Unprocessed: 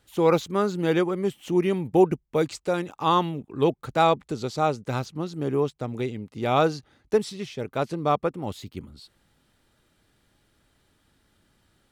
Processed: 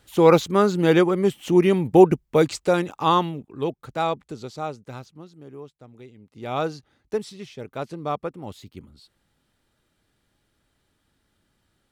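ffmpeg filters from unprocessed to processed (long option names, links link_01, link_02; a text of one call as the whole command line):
ffmpeg -i in.wav -af "volume=17dB,afade=type=out:start_time=2.73:duration=0.85:silence=0.316228,afade=type=out:start_time=4.23:duration=1.21:silence=0.266073,afade=type=in:start_time=6.15:duration=0.47:silence=0.266073" out.wav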